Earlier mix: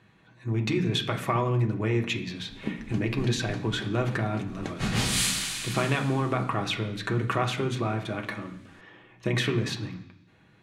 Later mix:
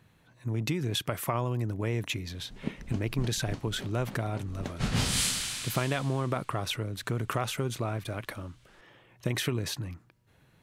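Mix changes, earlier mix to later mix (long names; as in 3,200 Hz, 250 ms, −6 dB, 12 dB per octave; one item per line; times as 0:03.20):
speech: remove high-frequency loss of the air 67 metres
reverb: off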